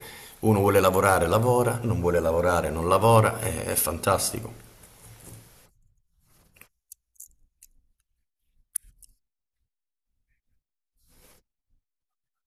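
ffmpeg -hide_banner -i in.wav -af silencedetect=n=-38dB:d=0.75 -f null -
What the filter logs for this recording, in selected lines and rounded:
silence_start: 5.39
silence_end: 6.61 | silence_duration: 1.23
silence_start: 7.65
silence_end: 8.75 | silence_duration: 1.11
silence_start: 9.04
silence_end: 12.47 | silence_duration: 3.42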